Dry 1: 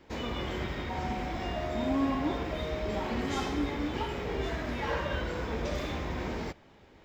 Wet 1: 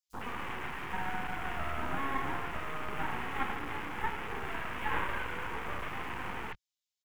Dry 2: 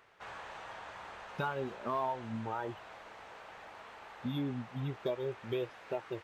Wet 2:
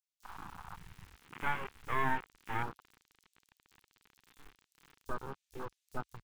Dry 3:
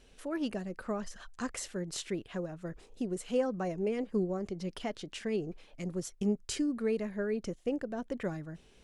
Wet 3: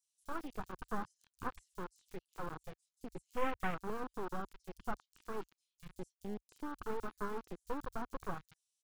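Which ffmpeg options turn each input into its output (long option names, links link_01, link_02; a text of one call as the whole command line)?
ffmpeg -i in.wav -filter_complex "[0:a]acrossover=split=2500[link_01][link_02];[link_02]acompressor=threshold=-58dB:ratio=4:attack=1:release=60[link_03];[link_01][link_03]amix=inputs=2:normalize=0,highpass=frequency=68:poles=1,lowshelf=frequency=470:width_type=q:width=1.5:gain=-12.5,acrossover=split=4800[link_04][link_05];[link_04]acrusher=bits=4:dc=4:mix=0:aa=0.000001[link_06];[link_06][link_05]amix=inputs=2:normalize=0,afwtdn=0.00631,equalizer=frequency=610:width_type=o:width=0.47:gain=-14,acrossover=split=4800[link_07][link_08];[link_07]adelay=30[link_09];[link_09][link_08]amix=inputs=2:normalize=0,volume=6.5dB" out.wav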